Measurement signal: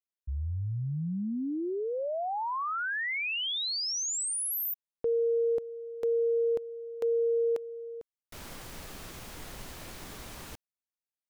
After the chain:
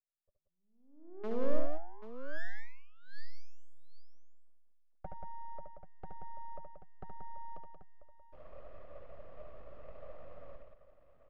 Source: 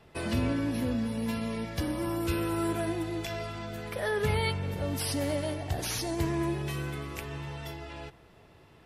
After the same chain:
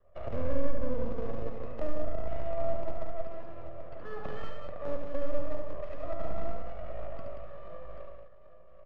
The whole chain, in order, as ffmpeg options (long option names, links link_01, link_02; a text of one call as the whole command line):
ffmpeg -i in.wav -filter_complex "[0:a]asplit=3[link_01][link_02][link_03];[link_01]bandpass=frequency=300:width_type=q:width=8,volume=0dB[link_04];[link_02]bandpass=frequency=870:width_type=q:width=8,volume=-6dB[link_05];[link_03]bandpass=frequency=2240:width_type=q:width=8,volume=-9dB[link_06];[link_04][link_05][link_06]amix=inputs=3:normalize=0,highpass=frequency=110:width=0.5412,highpass=frequency=110:width=1.3066,equalizer=frequency=260:width_type=q:width=4:gain=5,equalizer=frequency=460:width_type=q:width=4:gain=-6,equalizer=frequency=1800:width_type=q:width=4:gain=-3,lowpass=frequency=9000:width=0.5412,lowpass=frequency=9000:width=1.3066,acrossover=split=220[link_07][link_08];[link_07]acrusher=bits=5:dc=4:mix=0:aa=0.000001[link_09];[link_09][link_08]amix=inputs=2:normalize=0,aeval=exprs='abs(val(0))':channel_layout=same,acrossover=split=190|5000[link_10][link_11][link_12];[link_11]acompressor=threshold=-46dB:ratio=10:attack=2.8:release=776:knee=2.83:detection=peak[link_13];[link_10][link_13][link_12]amix=inputs=3:normalize=0,bass=frequency=250:gain=-5,treble=frequency=4000:gain=5,adynamicsmooth=sensitivity=6.5:basefreq=630,asplit=2[link_14][link_15];[link_15]aecho=0:1:72|82|181|785:0.562|0.133|0.501|0.282[link_16];[link_14][link_16]amix=inputs=2:normalize=0,volume=16dB" out.wav